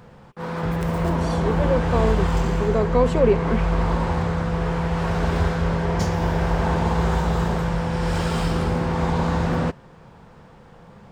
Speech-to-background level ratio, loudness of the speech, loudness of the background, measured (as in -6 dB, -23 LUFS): -1.0 dB, -24.0 LUFS, -23.0 LUFS